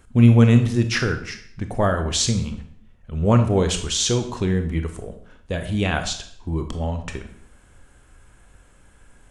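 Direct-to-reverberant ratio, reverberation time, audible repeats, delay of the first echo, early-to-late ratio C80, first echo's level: 7.0 dB, 0.60 s, none, none, 13.0 dB, none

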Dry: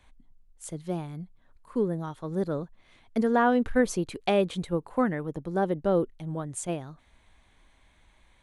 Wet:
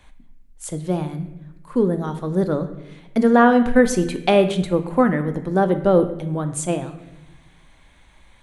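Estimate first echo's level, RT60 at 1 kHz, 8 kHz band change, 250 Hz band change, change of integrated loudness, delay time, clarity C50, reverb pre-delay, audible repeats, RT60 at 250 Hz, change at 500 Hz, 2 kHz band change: none, 0.85 s, +8.5 dB, +9.5 dB, +9.0 dB, none, 11.0 dB, 4 ms, none, 1.3 s, +9.0 dB, +8.5 dB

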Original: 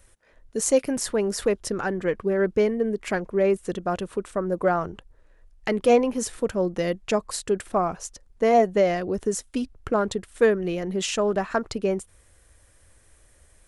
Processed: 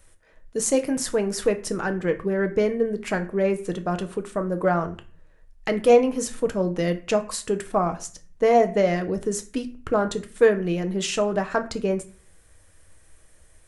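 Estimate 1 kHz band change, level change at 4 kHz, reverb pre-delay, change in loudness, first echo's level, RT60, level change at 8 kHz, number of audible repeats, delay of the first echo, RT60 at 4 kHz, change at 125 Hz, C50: +0.5 dB, +0.5 dB, 5 ms, +1.0 dB, none, 0.40 s, +0.5 dB, none, none, 0.30 s, +3.5 dB, 15.0 dB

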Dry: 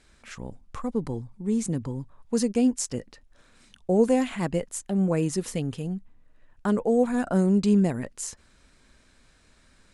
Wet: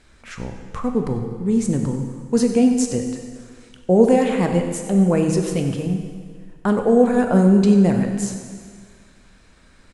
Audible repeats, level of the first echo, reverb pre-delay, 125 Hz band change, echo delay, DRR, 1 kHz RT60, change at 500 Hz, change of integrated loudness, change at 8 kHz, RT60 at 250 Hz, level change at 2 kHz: 1, -14.0 dB, 6 ms, +8.0 dB, 95 ms, 4.0 dB, 1.9 s, +8.0 dB, +7.5 dB, +3.5 dB, 1.8 s, +7.0 dB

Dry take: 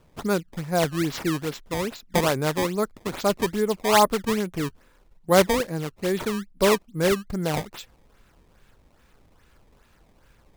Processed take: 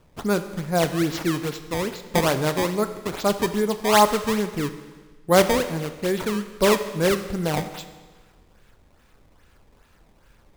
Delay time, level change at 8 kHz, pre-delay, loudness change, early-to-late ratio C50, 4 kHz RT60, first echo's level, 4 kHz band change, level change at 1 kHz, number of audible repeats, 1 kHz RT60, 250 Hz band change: none, +1.5 dB, 24 ms, +1.5 dB, 11.0 dB, 1.4 s, none, +1.5 dB, +1.5 dB, none, 1.4 s, +1.5 dB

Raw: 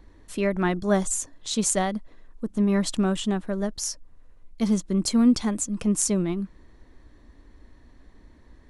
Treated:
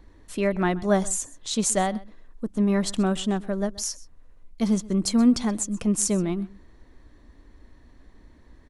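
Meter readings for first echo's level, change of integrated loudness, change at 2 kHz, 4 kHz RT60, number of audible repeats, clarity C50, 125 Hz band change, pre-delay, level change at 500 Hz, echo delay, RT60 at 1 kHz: -20.5 dB, 0.0 dB, 0.0 dB, none, 1, none, 0.0 dB, none, +1.0 dB, 0.128 s, none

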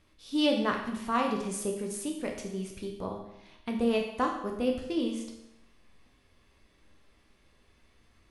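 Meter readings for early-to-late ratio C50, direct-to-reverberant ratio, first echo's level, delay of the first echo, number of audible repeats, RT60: 5.5 dB, 1.0 dB, none, none, none, 0.80 s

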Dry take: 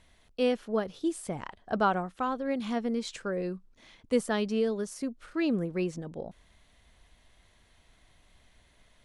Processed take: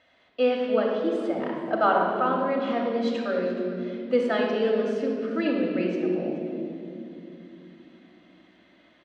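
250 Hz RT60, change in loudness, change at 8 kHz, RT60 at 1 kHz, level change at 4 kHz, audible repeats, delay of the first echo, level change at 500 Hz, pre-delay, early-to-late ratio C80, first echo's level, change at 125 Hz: 5.0 s, +5.5 dB, under -10 dB, 2.2 s, +3.0 dB, 1, 0.426 s, +7.5 dB, 3 ms, 3.0 dB, -17.0 dB, +0.5 dB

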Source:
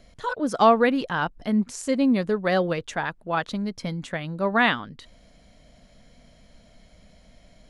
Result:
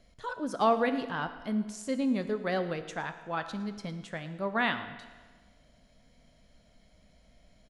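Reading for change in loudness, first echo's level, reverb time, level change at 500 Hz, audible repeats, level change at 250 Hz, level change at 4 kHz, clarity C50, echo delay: -8.0 dB, -19.5 dB, 1.4 s, -8.0 dB, 1, -8.0 dB, -8.0 dB, 11.0 dB, 0.112 s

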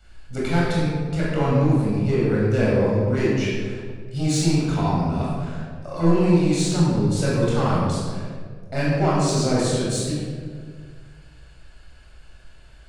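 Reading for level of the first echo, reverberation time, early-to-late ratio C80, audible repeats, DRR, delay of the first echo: none, 1.9 s, 0.5 dB, none, -7.0 dB, none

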